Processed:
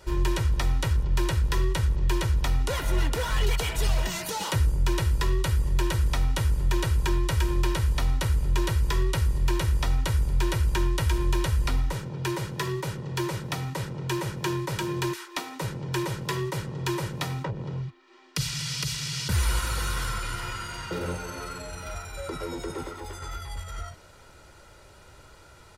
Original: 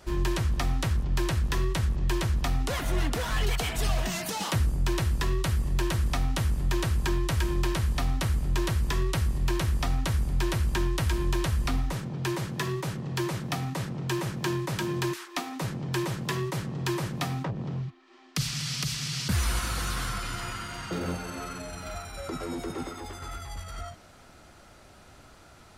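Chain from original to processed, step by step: comb 2.1 ms, depth 51%

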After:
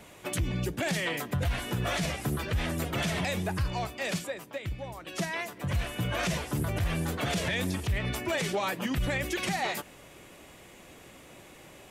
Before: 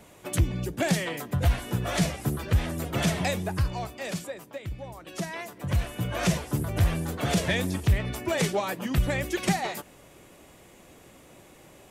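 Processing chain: bell 2500 Hz +4.5 dB 2 oct; limiter -21 dBFS, peak gain reduction 10.5 dB

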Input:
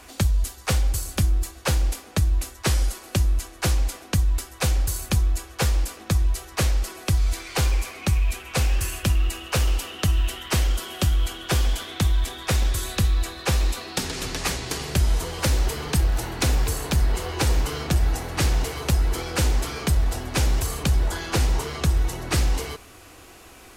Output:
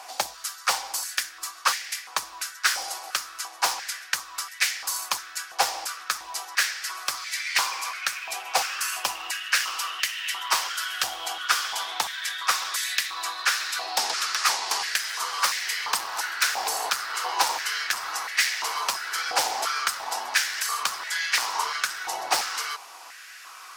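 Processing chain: bell 5200 Hz +7.5 dB 0.68 oct; wavefolder -14.5 dBFS; stepped high-pass 2.9 Hz 790–1900 Hz

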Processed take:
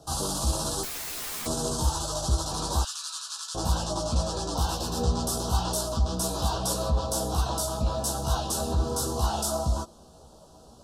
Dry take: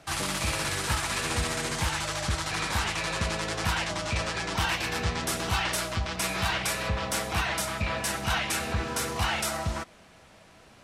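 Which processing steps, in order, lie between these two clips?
Butterworth band-stop 2100 Hz, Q 0.64; in parallel at -1 dB: limiter -24.5 dBFS, peak gain reduction 8.5 dB; 0.83–1.46 on the sum: wrapped overs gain 28.5 dB; 2.83–3.55 steep high-pass 1300 Hz 36 dB/oct; chorus voices 6, 0.62 Hz, delay 15 ms, depth 2.6 ms; gain +1.5 dB

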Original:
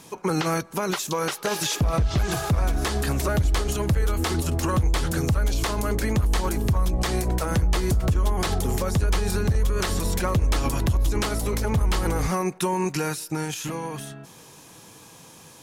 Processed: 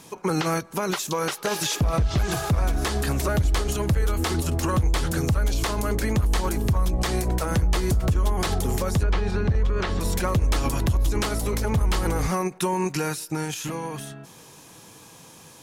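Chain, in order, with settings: 9.03–10.01 LPF 3300 Hz 12 dB/oct; ending taper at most 380 dB/s

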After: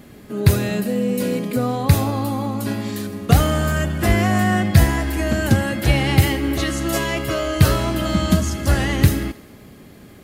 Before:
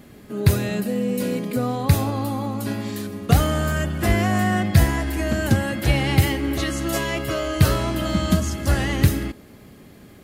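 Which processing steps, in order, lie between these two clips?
thinning echo 79 ms, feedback 60%, level -18.5 dB; gain +2.5 dB

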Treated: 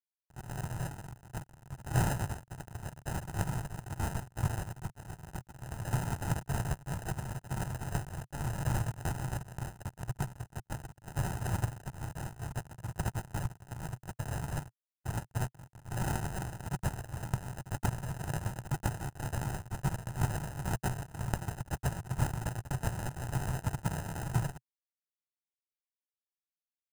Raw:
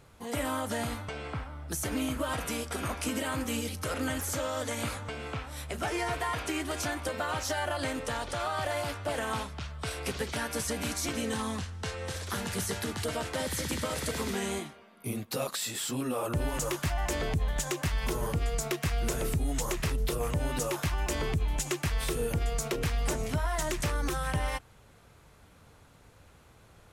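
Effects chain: high shelf 3400 Hz +9.5 dB; compressor 6:1, threshold -28 dBFS, peak gain reduction 6.5 dB; HPF 61 Hz 12 dB/oct; AGC gain up to 13.5 dB; spectral gate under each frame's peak -25 dB weak; sample-and-hold 39×; crossover distortion -41 dBFS; ten-band EQ 125 Hz +12 dB, 250 Hz -10 dB, 500 Hz -11 dB, 1000 Hz +8 dB, 2000 Hz -4 dB, 4000 Hz -10 dB, 8000 Hz +5 dB; gain +3 dB

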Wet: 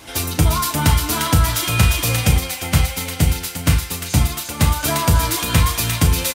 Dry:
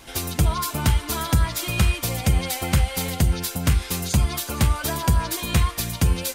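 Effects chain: HPF 60 Hz; doubler 35 ms -10.5 dB; thin delay 0.35 s, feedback 59%, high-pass 1500 Hz, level -3.5 dB; FDN reverb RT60 0.4 s, low-frequency decay 1×, high-frequency decay 0.6×, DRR 7 dB; 2.38–4.83 upward expander 1.5:1, over -28 dBFS; gain +4.5 dB

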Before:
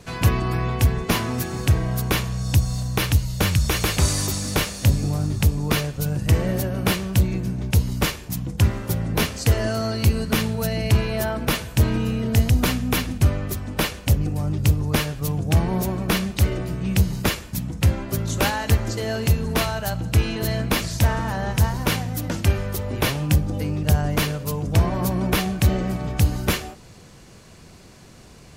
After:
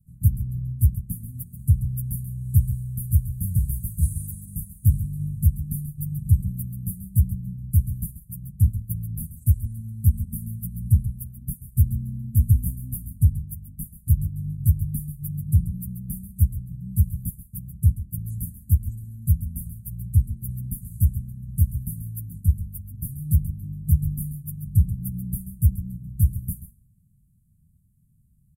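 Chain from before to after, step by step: dynamic EQ 9300 Hz, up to +6 dB, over -47 dBFS, Q 1.8; inverse Chebyshev band-stop 430–5300 Hz, stop band 50 dB; on a send: echo 0.135 s -9.5 dB; on the sum: upward expander 1.5:1, over -38 dBFS; gain +1 dB

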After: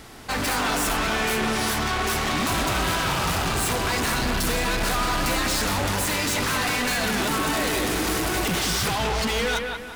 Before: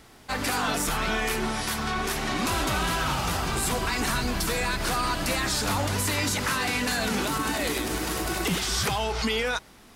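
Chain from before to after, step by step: hard clip -31.5 dBFS, distortion -7 dB; on a send: analogue delay 0.18 s, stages 4096, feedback 38%, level -4.5 dB; on the sum: gain +8 dB

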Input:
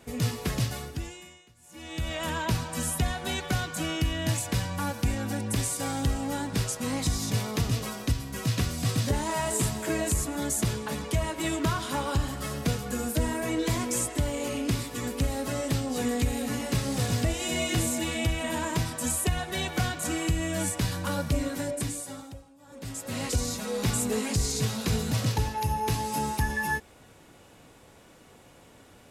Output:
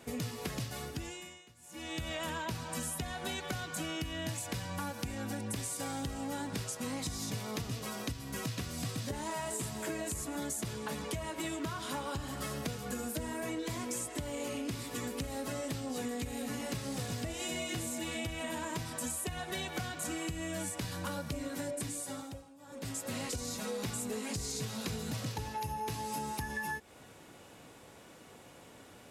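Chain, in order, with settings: HPF 110 Hz 6 dB/oct; compressor, threshold -35 dBFS, peak gain reduction 11.5 dB

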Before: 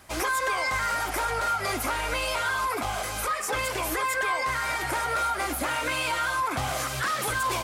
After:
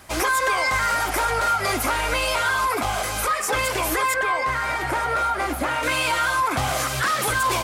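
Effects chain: 4.14–5.83 high shelf 3300 Hz -9.5 dB; gain +5.5 dB

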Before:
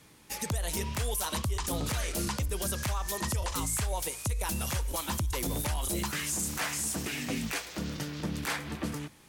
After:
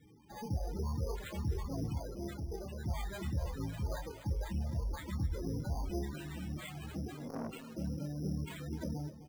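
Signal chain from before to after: self-modulated delay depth 0.88 ms; doubler 26 ms -3.5 dB; de-hum 254.2 Hz, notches 3; in parallel at +1 dB: limiter -29.5 dBFS, peak gain reduction 11 dB; on the sum: loudest bins only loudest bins 16; 1.98–2.84 low shelf 210 Hz -7.5 dB; on a send: tape echo 0.258 s, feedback 43%, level -12 dB, low-pass 1800 Hz; on the sum: sample-and-hold 8×; 7.15–7.71 core saturation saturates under 690 Hz; gain -7 dB

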